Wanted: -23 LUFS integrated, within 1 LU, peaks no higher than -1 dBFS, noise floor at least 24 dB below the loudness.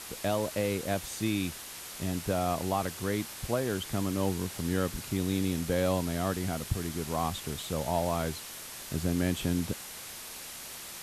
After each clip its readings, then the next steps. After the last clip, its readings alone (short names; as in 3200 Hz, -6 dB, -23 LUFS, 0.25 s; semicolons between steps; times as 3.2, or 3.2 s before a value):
noise floor -44 dBFS; noise floor target -56 dBFS; loudness -32.0 LUFS; peak -16.0 dBFS; loudness target -23.0 LUFS
-> denoiser 12 dB, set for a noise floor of -44 dBFS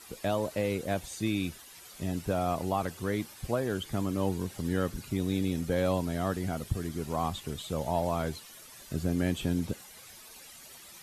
noise floor -51 dBFS; noise floor target -56 dBFS
-> denoiser 6 dB, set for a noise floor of -51 dBFS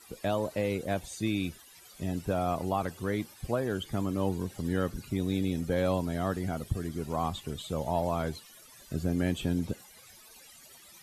noise floor -54 dBFS; noise floor target -57 dBFS
-> denoiser 6 dB, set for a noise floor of -54 dBFS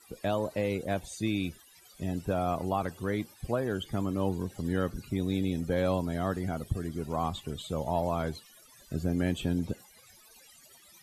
noise floor -58 dBFS; loudness -32.5 LUFS; peak -16.5 dBFS; loudness target -23.0 LUFS
-> gain +9.5 dB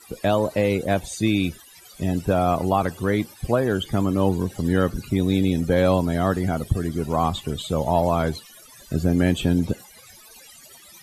loudness -23.0 LUFS; peak -7.0 dBFS; noise floor -48 dBFS